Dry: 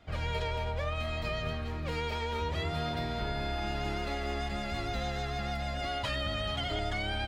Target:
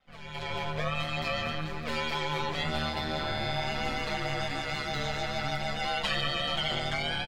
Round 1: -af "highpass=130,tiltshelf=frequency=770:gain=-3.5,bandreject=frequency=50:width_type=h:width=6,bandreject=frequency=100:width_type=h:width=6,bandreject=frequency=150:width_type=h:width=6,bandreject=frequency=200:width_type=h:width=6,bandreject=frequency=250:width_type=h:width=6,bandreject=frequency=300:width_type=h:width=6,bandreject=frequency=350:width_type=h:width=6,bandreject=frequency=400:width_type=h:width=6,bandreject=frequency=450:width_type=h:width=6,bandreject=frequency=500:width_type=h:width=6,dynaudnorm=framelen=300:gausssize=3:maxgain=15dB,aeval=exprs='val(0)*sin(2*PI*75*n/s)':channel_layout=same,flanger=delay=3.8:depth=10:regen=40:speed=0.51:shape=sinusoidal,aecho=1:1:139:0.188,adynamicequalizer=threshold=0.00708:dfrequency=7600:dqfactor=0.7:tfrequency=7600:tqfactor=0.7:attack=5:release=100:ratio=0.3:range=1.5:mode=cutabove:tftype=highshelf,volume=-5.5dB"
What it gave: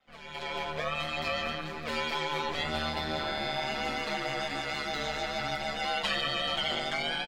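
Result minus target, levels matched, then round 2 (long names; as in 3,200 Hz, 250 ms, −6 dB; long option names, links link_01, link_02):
125 Hz band −7.0 dB
-af "tiltshelf=frequency=770:gain=-3.5,bandreject=frequency=50:width_type=h:width=6,bandreject=frequency=100:width_type=h:width=6,bandreject=frequency=150:width_type=h:width=6,bandreject=frequency=200:width_type=h:width=6,bandreject=frequency=250:width_type=h:width=6,bandreject=frequency=300:width_type=h:width=6,bandreject=frequency=350:width_type=h:width=6,bandreject=frequency=400:width_type=h:width=6,bandreject=frequency=450:width_type=h:width=6,bandreject=frequency=500:width_type=h:width=6,dynaudnorm=framelen=300:gausssize=3:maxgain=15dB,aeval=exprs='val(0)*sin(2*PI*75*n/s)':channel_layout=same,flanger=delay=3.8:depth=10:regen=40:speed=0.51:shape=sinusoidal,aecho=1:1:139:0.188,adynamicequalizer=threshold=0.00708:dfrequency=7600:dqfactor=0.7:tfrequency=7600:tqfactor=0.7:attack=5:release=100:ratio=0.3:range=1.5:mode=cutabove:tftype=highshelf,volume=-5.5dB"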